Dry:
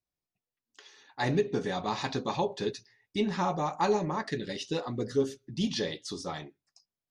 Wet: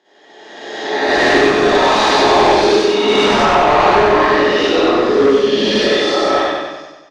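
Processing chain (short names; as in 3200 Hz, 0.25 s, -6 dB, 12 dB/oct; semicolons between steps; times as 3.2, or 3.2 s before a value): spectral swells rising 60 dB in 1.55 s; HPF 260 Hz 24 dB/oct; reverb RT60 0.75 s, pre-delay 20 ms, DRR -10 dB; overloaded stage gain 18.5 dB; LPF 6300 Hz 12 dB/oct, from 3.45 s 3200 Hz; feedback echo 95 ms, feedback 57%, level -3.5 dB; gain +8 dB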